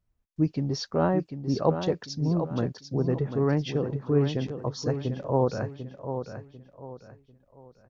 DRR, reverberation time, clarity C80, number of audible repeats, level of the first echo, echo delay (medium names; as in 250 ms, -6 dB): no reverb, no reverb, no reverb, 3, -8.5 dB, 745 ms